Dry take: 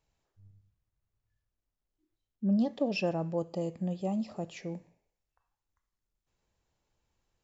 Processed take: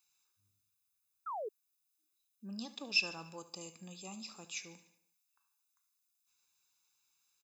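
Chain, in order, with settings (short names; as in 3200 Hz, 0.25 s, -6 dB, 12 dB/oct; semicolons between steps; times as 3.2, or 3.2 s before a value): differentiator; comb 0.8 ms, depth 72%; feedback echo 73 ms, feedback 51%, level -16 dB; painted sound fall, 1.26–1.49, 390–1400 Hz -49 dBFS; gain +9.5 dB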